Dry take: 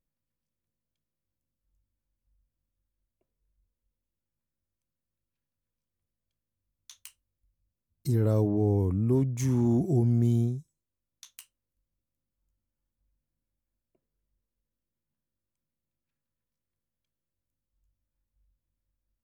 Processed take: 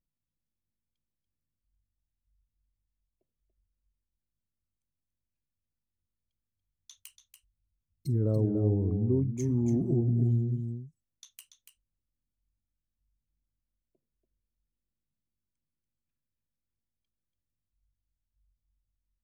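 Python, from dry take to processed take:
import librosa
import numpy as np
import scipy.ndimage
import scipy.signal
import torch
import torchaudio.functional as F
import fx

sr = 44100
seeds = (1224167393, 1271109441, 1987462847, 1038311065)

p1 = fx.envelope_sharpen(x, sr, power=1.5)
p2 = p1 + fx.echo_single(p1, sr, ms=286, db=-7.5, dry=0)
y = p2 * librosa.db_to_amplitude(-2.5)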